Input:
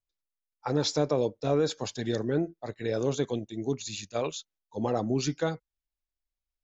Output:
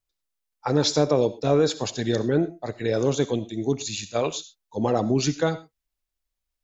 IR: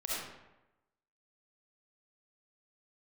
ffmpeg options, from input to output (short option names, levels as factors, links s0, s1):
-filter_complex "[0:a]asplit=2[s0][s1];[1:a]atrim=start_sample=2205,afade=t=out:st=0.18:d=0.01,atrim=end_sample=8379,highshelf=f=3600:g=8[s2];[s1][s2]afir=irnorm=-1:irlink=0,volume=0.126[s3];[s0][s3]amix=inputs=2:normalize=0,volume=1.78"